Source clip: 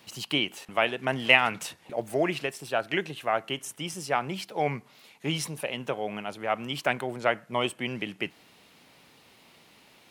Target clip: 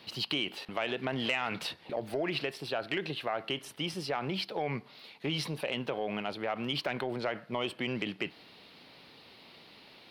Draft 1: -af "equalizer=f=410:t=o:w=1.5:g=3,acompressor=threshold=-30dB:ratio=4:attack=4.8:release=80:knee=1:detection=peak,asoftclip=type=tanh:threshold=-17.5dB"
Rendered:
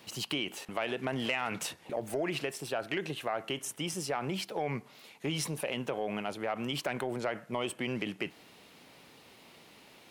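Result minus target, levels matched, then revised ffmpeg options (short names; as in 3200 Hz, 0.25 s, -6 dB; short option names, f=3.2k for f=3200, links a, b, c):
8000 Hz band +10.5 dB
-af "equalizer=f=410:t=o:w=1.5:g=3,acompressor=threshold=-30dB:ratio=4:attack=4.8:release=80:knee=1:detection=peak,highshelf=f=5.5k:t=q:w=3:g=-8,asoftclip=type=tanh:threshold=-17.5dB"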